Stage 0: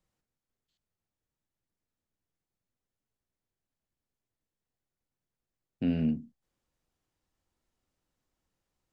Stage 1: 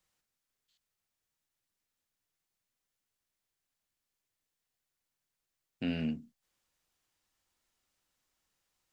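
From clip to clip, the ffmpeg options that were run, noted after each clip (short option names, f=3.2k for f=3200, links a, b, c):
-af "tiltshelf=f=800:g=-7"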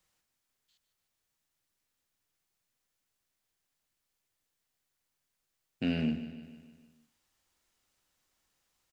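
-filter_complex "[0:a]asplit=2[a][b];[b]aeval=exprs='clip(val(0),-1,0.0335)':c=same,volume=-7dB[c];[a][c]amix=inputs=2:normalize=0,aecho=1:1:152|304|456|608|760|912:0.237|0.13|0.0717|0.0395|0.0217|0.0119"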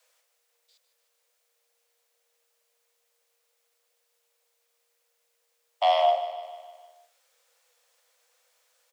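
-af "afreqshift=470,volume=9dB"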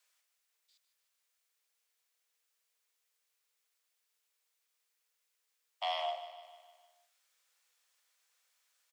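-af "highpass=1.1k,volume=-7dB"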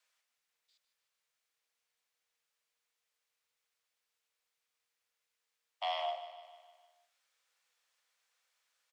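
-af "highshelf=f=7k:g=-10"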